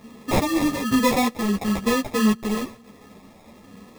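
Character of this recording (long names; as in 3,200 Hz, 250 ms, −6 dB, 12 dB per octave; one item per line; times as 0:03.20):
phaser sweep stages 2, 1.1 Hz, lowest notch 560–1,600 Hz
aliases and images of a low sample rate 1,500 Hz, jitter 0%
a shimmering, thickened sound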